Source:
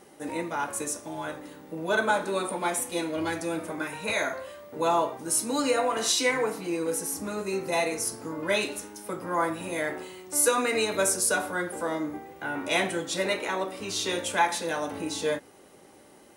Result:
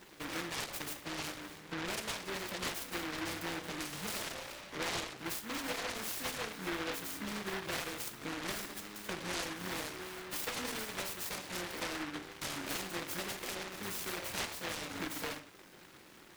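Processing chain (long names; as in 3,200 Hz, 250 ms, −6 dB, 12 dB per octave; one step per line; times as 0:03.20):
downward compressor 6 to 1, threshold −34 dBFS, peak gain reduction 15.5 dB
convolution reverb RT60 0.50 s, pre-delay 6 ms, DRR 9.5 dB
short delay modulated by noise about 1,400 Hz, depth 0.38 ms
level −3.5 dB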